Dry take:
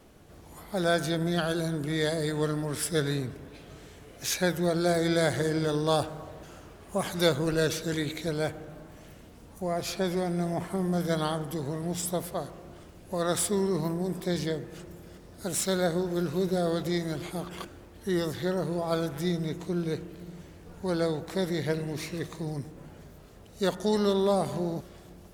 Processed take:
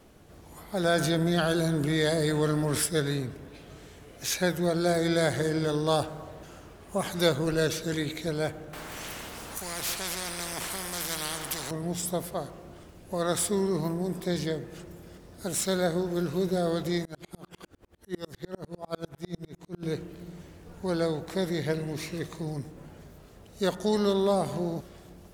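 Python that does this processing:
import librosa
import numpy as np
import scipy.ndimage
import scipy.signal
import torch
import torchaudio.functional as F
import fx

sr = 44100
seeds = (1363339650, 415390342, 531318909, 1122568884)

y = fx.env_flatten(x, sr, amount_pct=50, at=(0.84, 2.86))
y = fx.spectral_comp(y, sr, ratio=4.0, at=(8.73, 11.71))
y = fx.tremolo_decay(y, sr, direction='swelling', hz=10.0, depth_db=36, at=(17.05, 19.83))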